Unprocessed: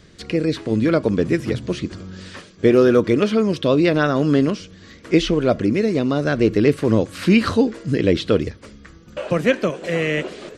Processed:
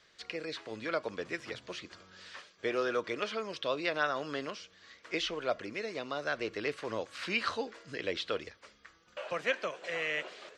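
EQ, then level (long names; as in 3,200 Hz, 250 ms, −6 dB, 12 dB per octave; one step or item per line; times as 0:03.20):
three-way crossover with the lows and the highs turned down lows −21 dB, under 580 Hz, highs −19 dB, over 7,400 Hz
−8.5 dB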